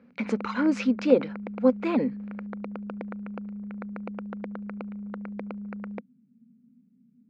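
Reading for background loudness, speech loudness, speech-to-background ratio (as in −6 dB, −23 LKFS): −37.5 LKFS, −25.5 LKFS, 12.0 dB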